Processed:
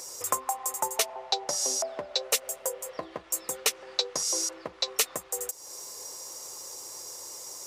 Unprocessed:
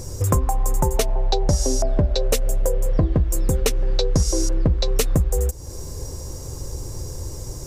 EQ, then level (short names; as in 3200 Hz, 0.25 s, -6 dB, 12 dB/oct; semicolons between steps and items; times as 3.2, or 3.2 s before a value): HPF 920 Hz 12 dB/oct; notch 1600 Hz, Q 13; 0.0 dB